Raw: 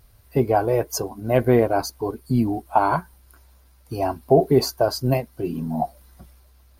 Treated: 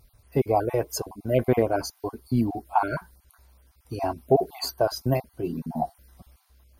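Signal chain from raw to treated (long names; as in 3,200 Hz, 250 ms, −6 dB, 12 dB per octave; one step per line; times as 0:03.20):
time-frequency cells dropped at random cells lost 26%
level −3 dB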